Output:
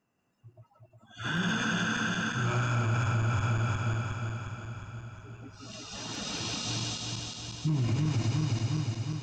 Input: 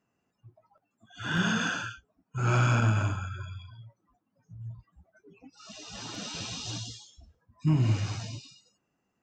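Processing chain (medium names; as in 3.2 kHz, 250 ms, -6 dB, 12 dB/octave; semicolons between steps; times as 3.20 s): backward echo that repeats 179 ms, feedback 78%, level -1.5 dB; peak limiter -21 dBFS, peak gain reduction 10.5 dB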